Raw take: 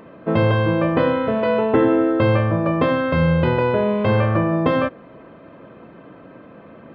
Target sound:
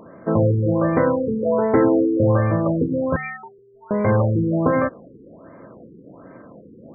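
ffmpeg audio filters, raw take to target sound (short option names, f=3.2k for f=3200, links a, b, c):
-filter_complex "[0:a]asettb=1/sr,asplit=3[a][b][c];[a]atrim=end=3.164[d];[b]atrim=start=3.16:end=3.91,asetpts=PTS-STARTPTS,afade=t=in:d=0.004:c=qsin,afade=t=out:st=0.746:d=0.004:c=qsin,lowpass=f=2.9k:t=q:w=0.5098,lowpass=f=2.9k:t=q:w=0.6013,lowpass=f=2.9k:t=q:w=0.9,lowpass=f=2.9k:t=q:w=2.563,afreqshift=-3400[e];[c]atrim=start=3.906[f];[d][e]acrossfade=d=0.004:c1=hsin:c2=qsin[g];[g][f]acrossfade=d=0.004:c1=qsin:c2=hsin,bandreject=f=151.1:t=h:w=4,bandreject=f=302.2:t=h:w=4,bandreject=f=453.3:t=h:w=4,afftfilt=real='re*lt(b*sr/1024,470*pow(2400/470,0.5+0.5*sin(2*PI*1.3*pts/sr)))':imag='im*lt(b*sr/1024,470*pow(2400/470,0.5+0.5*sin(2*PI*1.3*pts/sr)))':win_size=1024:overlap=0.75"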